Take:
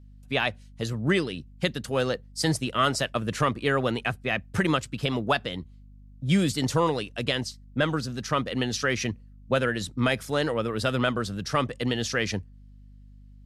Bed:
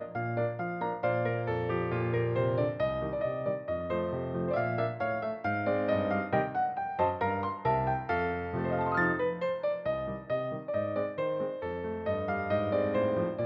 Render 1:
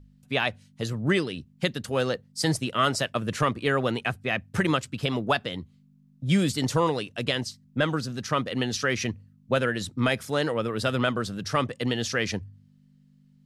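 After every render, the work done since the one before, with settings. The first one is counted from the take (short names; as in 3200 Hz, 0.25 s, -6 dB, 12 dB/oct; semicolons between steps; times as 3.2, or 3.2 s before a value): de-hum 50 Hz, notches 2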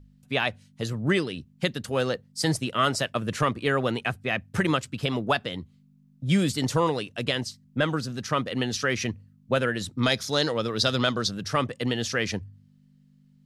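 10.03–11.31 band shelf 4800 Hz +12 dB 1.1 oct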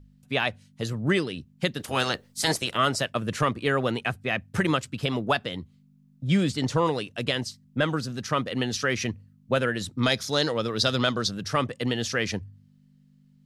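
1.78–2.76 spectral limiter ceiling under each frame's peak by 19 dB; 6.27–6.85 air absorption 55 m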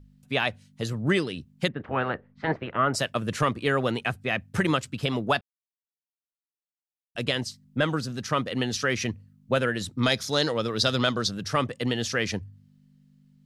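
1.68–2.94 LPF 2000 Hz 24 dB/oct; 5.41–7.15 mute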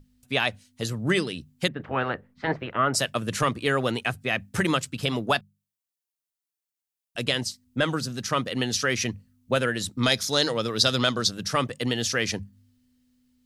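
high shelf 4700 Hz +8.5 dB; notches 50/100/150/200 Hz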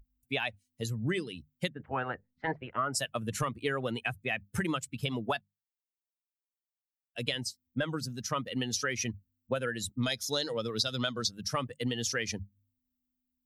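per-bin expansion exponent 1.5; compressor 5:1, threshold -28 dBFS, peak gain reduction 10.5 dB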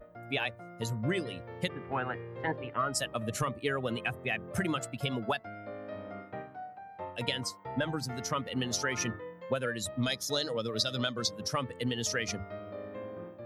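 add bed -13.5 dB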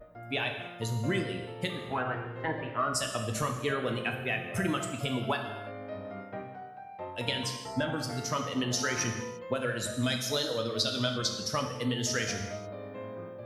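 non-linear reverb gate 0.37 s falling, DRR 3 dB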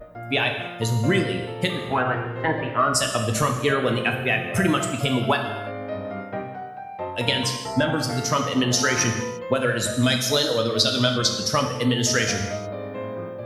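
gain +9.5 dB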